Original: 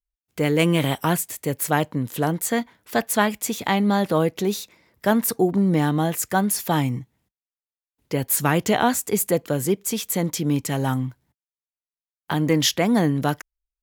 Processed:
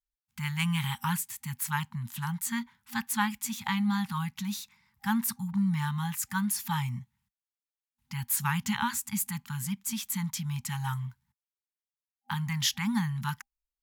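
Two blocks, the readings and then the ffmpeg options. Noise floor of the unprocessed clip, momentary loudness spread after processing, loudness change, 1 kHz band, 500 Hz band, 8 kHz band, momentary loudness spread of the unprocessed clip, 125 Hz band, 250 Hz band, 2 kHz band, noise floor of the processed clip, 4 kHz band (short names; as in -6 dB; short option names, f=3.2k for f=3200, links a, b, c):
under -85 dBFS, 9 LU, -9.0 dB, -9.5 dB, under -40 dB, -7.0 dB, 8 LU, -7.0 dB, -9.5 dB, -7.0 dB, under -85 dBFS, -7.0 dB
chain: -af "afftfilt=real='re*(1-between(b*sr/4096,240,800))':imag='im*(1-between(b*sr/4096,240,800))':win_size=4096:overlap=0.75,volume=-7dB"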